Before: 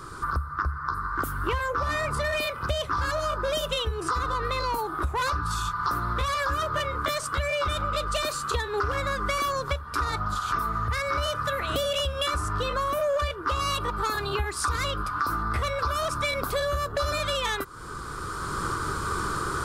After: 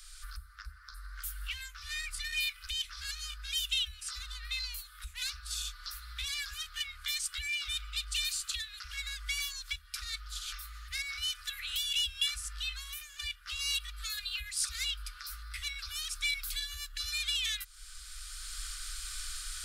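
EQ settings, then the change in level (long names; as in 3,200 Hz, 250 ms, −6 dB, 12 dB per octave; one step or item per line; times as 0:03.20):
inverse Chebyshev band-stop filter 120–800 Hz, stop band 60 dB
0.0 dB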